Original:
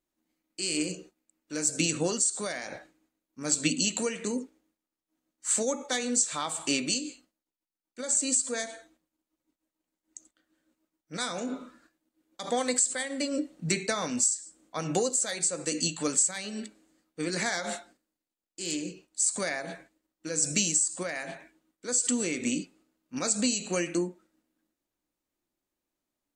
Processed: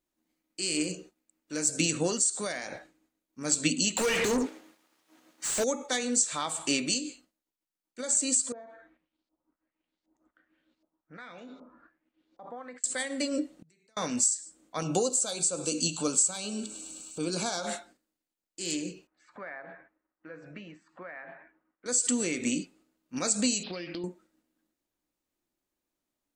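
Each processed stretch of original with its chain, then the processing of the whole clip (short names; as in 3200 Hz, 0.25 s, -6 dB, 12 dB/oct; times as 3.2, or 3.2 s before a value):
3.97–5.64 compressor 2.5:1, threshold -35 dBFS + overdrive pedal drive 32 dB, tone 3500 Hz, clips at -18 dBFS
8.52–12.84 compressor 2:1, threshold -55 dBFS + LFO low-pass saw up 1.3 Hz 700–5000 Hz
13.57–13.97 compressor 4:1, threshold -38 dBFS + flipped gate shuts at -39 dBFS, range -27 dB
14.82–17.67 thinning echo 0.103 s, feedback 74%, high-pass 930 Hz, level -21 dB + upward compressor, threshold -29 dBFS + Butterworth band-stop 1900 Hz, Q 1.9
19.07–21.86 LPF 1700 Hz 24 dB/oct + tilt shelf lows -7.5 dB, about 680 Hz + compressor 1.5:1, threshold -54 dBFS
23.63–24.04 careless resampling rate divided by 4×, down none, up filtered + compressor, threshold -34 dBFS
whole clip: dry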